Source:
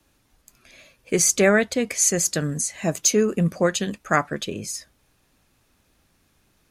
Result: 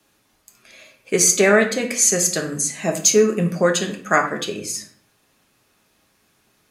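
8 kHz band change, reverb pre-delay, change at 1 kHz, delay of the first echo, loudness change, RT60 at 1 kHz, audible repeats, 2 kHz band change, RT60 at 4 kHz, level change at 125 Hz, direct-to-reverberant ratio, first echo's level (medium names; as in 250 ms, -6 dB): +4.0 dB, 3 ms, +4.0 dB, no echo, +3.5 dB, 0.50 s, no echo, +4.0 dB, 0.40 s, -0.5 dB, 3.0 dB, no echo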